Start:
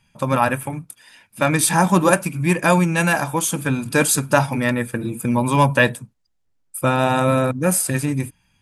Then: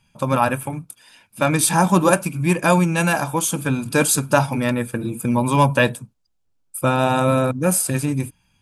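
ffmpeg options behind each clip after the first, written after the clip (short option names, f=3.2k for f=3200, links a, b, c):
-af "equalizer=f=1.9k:t=o:w=0.28:g=-7.5"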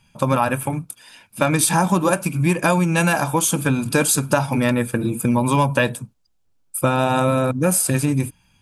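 -af "acompressor=threshold=-18dB:ratio=5,volume=4dB"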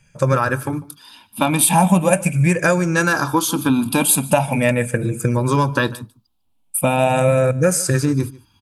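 -af "afftfilt=real='re*pow(10,12/40*sin(2*PI*(0.53*log(max(b,1)*sr/1024/100)/log(2)-(-0.4)*(pts-256)/sr)))':imag='im*pow(10,12/40*sin(2*PI*(0.53*log(max(b,1)*sr/1024/100)/log(2)-(-0.4)*(pts-256)/sr)))':win_size=1024:overlap=0.75,aecho=1:1:148:0.0841"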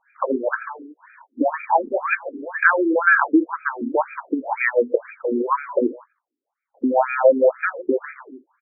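-filter_complex "[0:a]asplit=2[a][b];[b]acrusher=bits=3:mode=log:mix=0:aa=0.000001,volume=-4.5dB[c];[a][c]amix=inputs=2:normalize=0,afftfilt=real='re*between(b*sr/1024,310*pow(1800/310,0.5+0.5*sin(2*PI*2*pts/sr))/1.41,310*pow(1800/310,0.5+0.5*sin(2*PI*2*pts/sr))*1.41)':imag='im*between(b*sr/1024,310*pow(1800/310,0.5+0.5*sin(2*PI*2*pts/sr))/1.41,310*pow(1800/310,0.5+0.5*sin(2*PI*2*pts/sr))*1.41)':win_size=1024:overlap=0.75,volume=1.5dB"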